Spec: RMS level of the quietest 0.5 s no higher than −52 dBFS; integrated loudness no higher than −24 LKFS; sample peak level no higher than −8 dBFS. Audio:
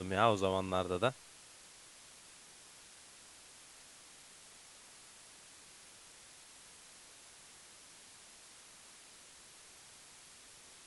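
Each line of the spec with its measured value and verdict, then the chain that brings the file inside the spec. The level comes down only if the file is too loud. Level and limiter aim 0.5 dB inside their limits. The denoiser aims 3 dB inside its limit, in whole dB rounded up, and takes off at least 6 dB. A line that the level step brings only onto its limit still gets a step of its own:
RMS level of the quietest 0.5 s −58 dBFS: in spec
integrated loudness −33.5 LKFS: in spec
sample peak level −13.5 dBFS: in spec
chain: no processing needed

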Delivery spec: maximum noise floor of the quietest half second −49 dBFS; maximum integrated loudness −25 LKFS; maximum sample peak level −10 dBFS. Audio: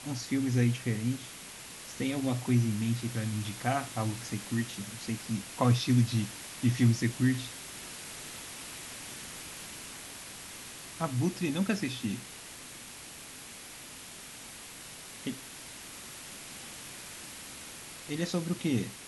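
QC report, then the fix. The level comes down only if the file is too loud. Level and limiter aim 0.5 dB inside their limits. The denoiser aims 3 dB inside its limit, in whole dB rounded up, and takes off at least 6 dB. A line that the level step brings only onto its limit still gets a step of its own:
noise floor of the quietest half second −47 dBFS: out of spec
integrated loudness −33.0 LKFS: in spec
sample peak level −13.5 dBFS: in spec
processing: broadband denoise 6 dB, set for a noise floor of −47 dBFS

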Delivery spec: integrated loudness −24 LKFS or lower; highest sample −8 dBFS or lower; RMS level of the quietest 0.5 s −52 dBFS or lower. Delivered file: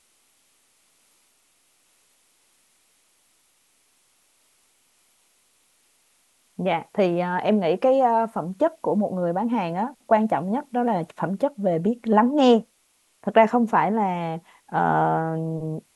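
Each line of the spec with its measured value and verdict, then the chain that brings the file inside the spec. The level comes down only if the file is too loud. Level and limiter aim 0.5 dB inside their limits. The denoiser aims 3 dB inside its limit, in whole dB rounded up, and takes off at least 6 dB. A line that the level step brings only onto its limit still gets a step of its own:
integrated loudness −22.5 LKFS: out of spec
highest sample −4.5 dBFS: out of spec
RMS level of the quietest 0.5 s −65 dBFS: in spec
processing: level −2 dB
brickwall limiter −8.5 dBFS

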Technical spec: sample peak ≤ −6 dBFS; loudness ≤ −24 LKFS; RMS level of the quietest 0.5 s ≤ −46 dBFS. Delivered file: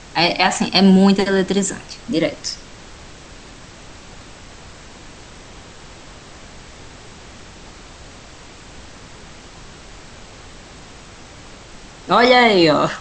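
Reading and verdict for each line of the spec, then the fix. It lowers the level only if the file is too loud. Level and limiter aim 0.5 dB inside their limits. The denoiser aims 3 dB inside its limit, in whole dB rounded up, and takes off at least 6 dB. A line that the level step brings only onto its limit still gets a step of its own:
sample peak −1.5 dBFS: out of spec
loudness −15.0 LKFS: out of spec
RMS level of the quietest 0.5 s −40 dBFS: out of spec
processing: level −9.5 dB

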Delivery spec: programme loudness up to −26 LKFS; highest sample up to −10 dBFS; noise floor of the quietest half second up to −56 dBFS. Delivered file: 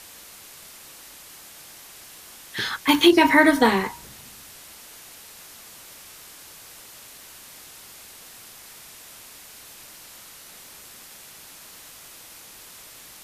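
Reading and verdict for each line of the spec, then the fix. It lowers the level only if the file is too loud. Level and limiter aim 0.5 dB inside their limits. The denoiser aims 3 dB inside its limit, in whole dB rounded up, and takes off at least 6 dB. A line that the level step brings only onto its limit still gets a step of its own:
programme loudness −18.5 LKFS: out of spec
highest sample −4.5 dBFS: out of spec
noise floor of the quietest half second −45 dBFS: out of spec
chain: broadband denoise 6 dB, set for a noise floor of −45 dBFS
level −8 dB

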